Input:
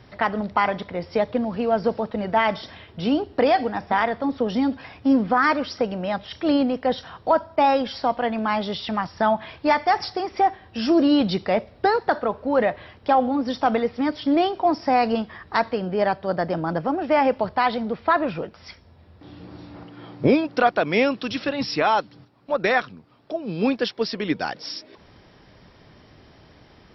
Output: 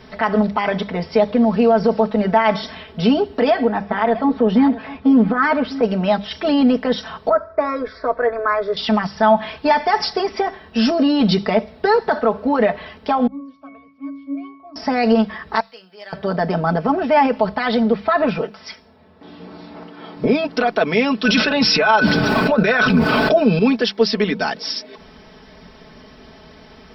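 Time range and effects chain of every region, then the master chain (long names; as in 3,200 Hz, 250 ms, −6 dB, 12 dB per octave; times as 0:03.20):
0:03.50–0:05.83: high-frequency loss of the air 260 metres + single-tap delay 647 ms −18 dB
0:07.29–0:08.77: low-pass filter 2,400 Hz + phaser with its sweep stopped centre 810 Hz, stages 6
0:13.27–0:14.76: spectral tilt +3 dB per octave + resonances in every octave C#, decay 0.54 s
0:15.60–0:16.13: first difference + tuned comb filter 96 Hz, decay 0.26 s
0:18.38–0:20.17: high-pass filter 260 Hz 6 dB per octave + one half of a high-frequency compander decoder only
0:21.25–0:23.59: parametric band 560 Hz +5.5 dB 0.25 octaves + hollow resonant body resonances 1,500/2,500 Hz, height 16 dB, ringing for 85 ms + envelope flattener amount 100%
whole clip: brickwall limiter −15.5 dBFS; mains-hum notches 50/100/150/200 Hz; comb filter 4.6 ms, depth 87%; level +6 dB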